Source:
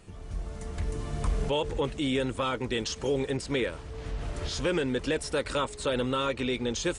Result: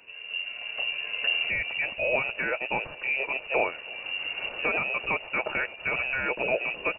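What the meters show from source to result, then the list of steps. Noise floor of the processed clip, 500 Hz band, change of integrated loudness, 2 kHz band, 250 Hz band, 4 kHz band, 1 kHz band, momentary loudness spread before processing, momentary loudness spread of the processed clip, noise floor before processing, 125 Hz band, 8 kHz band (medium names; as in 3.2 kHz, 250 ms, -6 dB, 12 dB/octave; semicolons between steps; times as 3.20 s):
-43 dBFS, -2.5 dB, +3.0 dB, +11.0 dB, -12.0 dB, +2.5 dB, +1.5 dB, 10 LU, 6 LU, -42 dBFS, -14.5 dB, under -40 dB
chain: dynamic bell 2.1 kHz, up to +7 dB, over -53 dBFS, Q 4.5; frequency inversion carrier 2.8 kHz; peaking EQ 560 Hz +12 dB 1.2 oct; delay 325 ms -23.5 dB; trim -2 dB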